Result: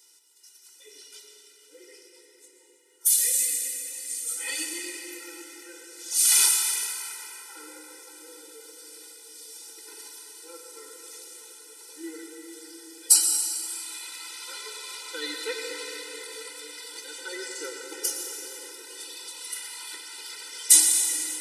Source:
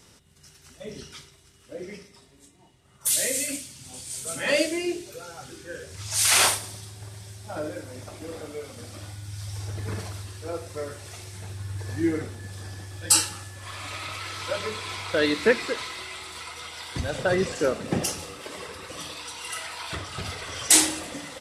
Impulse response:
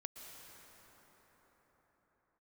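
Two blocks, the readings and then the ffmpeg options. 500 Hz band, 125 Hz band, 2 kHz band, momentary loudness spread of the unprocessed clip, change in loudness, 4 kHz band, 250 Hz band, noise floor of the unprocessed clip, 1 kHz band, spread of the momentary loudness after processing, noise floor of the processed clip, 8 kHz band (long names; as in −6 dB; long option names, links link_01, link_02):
−13.5 dB, below −40 dB, −7.5 dB, 20 LU, +2.5 dB, −2.0 dB, −14.0 dB, −56 dBFS, −11.0 dB, 25 LU, −56 dBFS, +3.0 dB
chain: -filter_complex "[1:a]atrim=start_sample=2205,asetrate=52920,aresample=44100[link_01];[0:a][link_01]afir=irnorm=-1:irlink=0,crystalizer=i=9:c=0,afftfilt=real='re*eq(mod(floor(b*sr/1024/260),2),1)':imag='im*eq(mod(floor(b*sr/1024/260),2),1)':win_size=1024:overlap=0.75,volume=-8dB"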